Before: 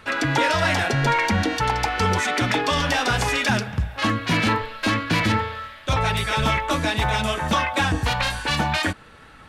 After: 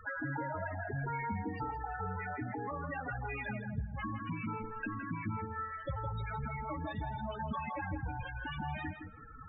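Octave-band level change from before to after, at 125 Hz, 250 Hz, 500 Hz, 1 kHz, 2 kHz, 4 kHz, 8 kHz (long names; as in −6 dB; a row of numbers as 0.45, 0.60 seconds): −14.5 dB, −15.5 dB, −17.5 dB, −16.0 dB, −19.0 dB, −31.5 dB, below −40 dB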